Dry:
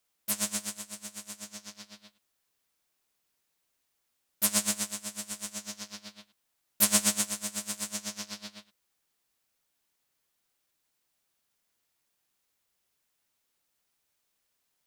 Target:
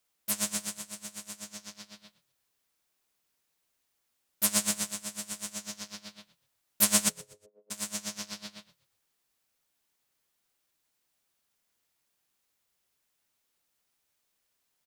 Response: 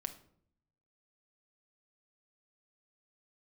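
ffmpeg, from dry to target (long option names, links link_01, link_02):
-filter_complex "[0:a]asplit=3[link_01][link_02][link_03];[link_01]afade=type=out:start_time=7.08:duration=0.02[link_04];[link_02]asuperpass=centerf=440:order=4:qfactor=3.9,afade=type=in:start_time=7.08:duration=0.02,afade=type=out:start_time=7.7:duration=0.02[link_05];[link_03]afade=type=in:start_time=7.7:duration=0.02[link_06];[link_04][link_05][link_06]amix=inputs=3:normalize=0,asplit=4[link_07][link_08][link_09][link_10];[link_08]adelay=122,afreqshift=-37,volume=-20.5dB[link_11];[link_09]adelay=244,afreqshift=-74,volume=-30.1dB[link_12];[link_10]adelay=366,afreqshift=-111,volume=-39.8dB[link_13];[link_07][link_11][link_12][link_13]amix=inputs=4:normalize=0"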